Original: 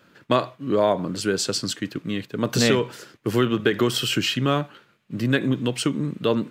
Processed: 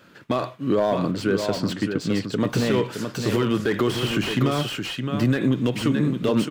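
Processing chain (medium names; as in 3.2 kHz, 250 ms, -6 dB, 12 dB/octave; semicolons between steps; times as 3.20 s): 1.11–2.40 s: low-pass 2.3 kHz 6 dB/octave; peak limiter -15.5 dBFS, peak gain reduction 9.5 dB; delay 617 ms -7 dB; slew-rate limiter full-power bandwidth 74 Hz; trim +4 dB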